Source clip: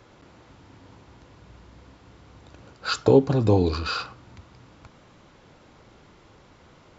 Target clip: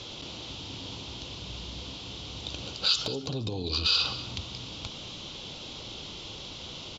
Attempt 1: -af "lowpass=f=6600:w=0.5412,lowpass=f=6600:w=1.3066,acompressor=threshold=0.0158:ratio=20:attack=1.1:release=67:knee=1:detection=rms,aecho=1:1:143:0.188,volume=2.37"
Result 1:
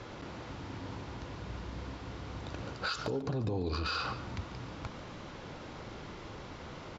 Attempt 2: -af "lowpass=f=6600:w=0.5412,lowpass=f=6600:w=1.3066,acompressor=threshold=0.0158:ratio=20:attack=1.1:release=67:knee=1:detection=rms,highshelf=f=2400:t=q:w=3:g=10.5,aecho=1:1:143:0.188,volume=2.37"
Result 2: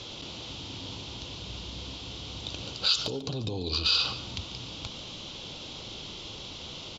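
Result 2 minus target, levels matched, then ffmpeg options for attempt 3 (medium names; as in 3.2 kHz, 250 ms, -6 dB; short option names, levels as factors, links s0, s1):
echo 54 ms early
-af "lowpass=f=6600:w=0.5412,lowpass=f=6600:w=1.3066,acompressor=threshold=0.0158:ratio=20:attack=1.1:release=67:knee=1:detection=rms,highshelf=f=2400:t=q:w=3:g=10.5,aecho=1:1:197:0.188,volume=2.37"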